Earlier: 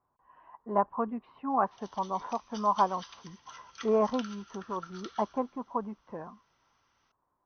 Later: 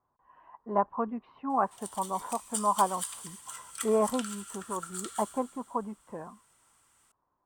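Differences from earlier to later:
background: send +6.5 dB; master: remove brick-wall FIR low-pass 6300 Hz

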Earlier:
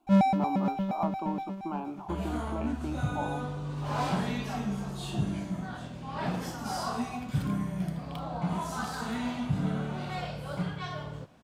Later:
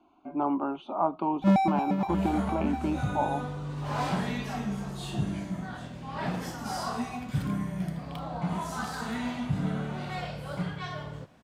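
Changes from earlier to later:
speech +6.5 dB; first sound: entry +1.35 s; master: add bell 1900 Hz +3.5 dB 0.38 oct

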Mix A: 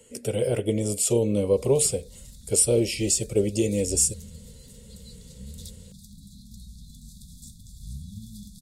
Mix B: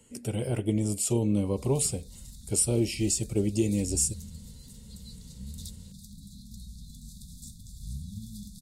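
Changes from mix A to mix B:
speech: add EQ curve 320 Hz 0 dB, 490 Hz -13 dB, 820 Hz 0 dB, 1900 Hz -5 dB; master: add notch 3400 Hz, Q 26

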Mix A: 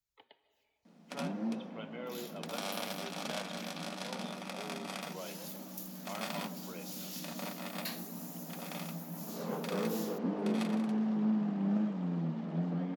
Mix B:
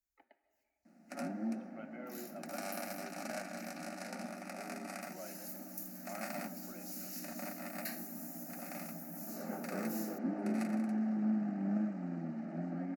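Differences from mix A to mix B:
speech: add high shelf 3300 Hz -10 dB; second sound: send on; master: add fixed phaser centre 680 Hz, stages 8

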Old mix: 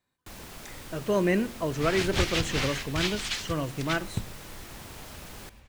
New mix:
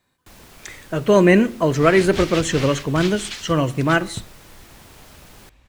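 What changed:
speech +11.5 dB; reverb: off

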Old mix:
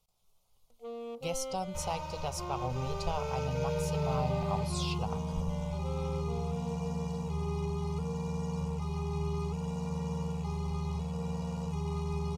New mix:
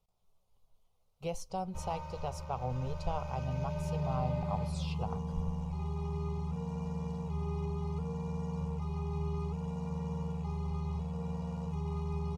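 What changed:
first sound: muted; second sound: add bell 330 Hz -3.5 dB 2.2 oct; master: add high shelf 2200 Hz -11.5 dB

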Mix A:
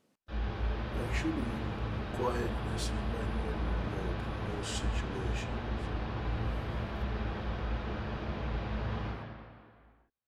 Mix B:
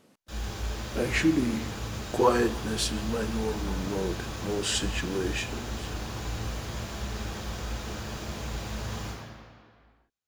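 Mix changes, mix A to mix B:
speech +11.5 dB; background: remove Gaussian blur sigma 2.7 samples

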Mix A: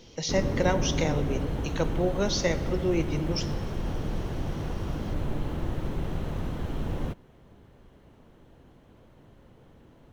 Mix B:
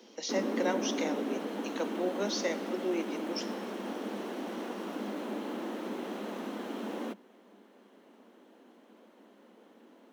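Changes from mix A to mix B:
speech -5.5 dB; master: add steep high-pass 200 Hz 96 dB/oct

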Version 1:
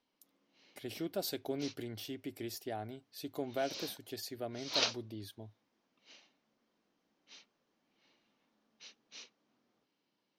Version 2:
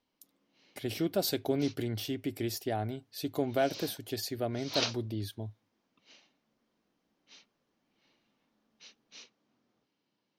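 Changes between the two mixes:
speech +6.5 dB; master: add bell 87 Hz +6 dB 2.3 oct

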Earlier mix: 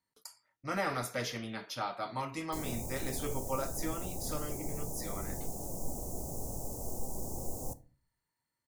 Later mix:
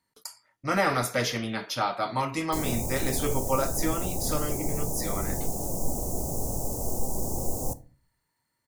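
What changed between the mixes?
speech +9.0 dB; background +9.0 dB

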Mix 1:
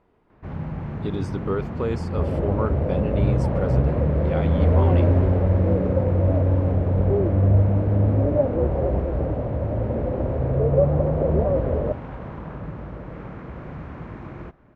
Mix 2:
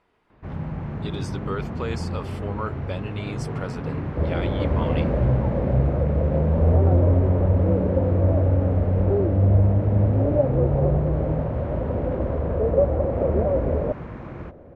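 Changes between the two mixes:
speech: add tilt shelf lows -7.5 dB, about 1100 Hz; second sound: entry +2.00 s

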